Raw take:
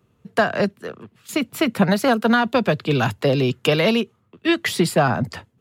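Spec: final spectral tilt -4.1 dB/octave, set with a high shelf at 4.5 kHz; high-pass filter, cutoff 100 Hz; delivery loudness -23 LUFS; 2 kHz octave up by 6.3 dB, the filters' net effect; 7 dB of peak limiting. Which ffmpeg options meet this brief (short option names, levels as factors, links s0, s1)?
-af "highpass=100,equalizer=f=2000:t=o:g=7,highshelf=f=4500:g=7.5,volume=0.75,alimiter=limit=0.251:level=0:latency=1"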